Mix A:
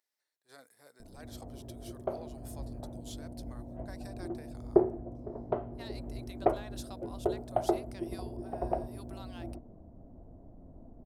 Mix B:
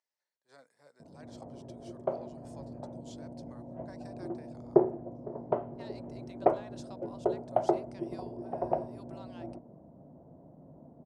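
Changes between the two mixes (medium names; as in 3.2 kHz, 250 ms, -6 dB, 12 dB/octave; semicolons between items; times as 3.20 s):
speech -4.5 dB; master: add cabinet simulation 150–7800 Hz, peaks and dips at 150 Hz +10 dB, 550 Hz +5 dB, 940 Hz +5 dB, 3.7 kHz -4 dB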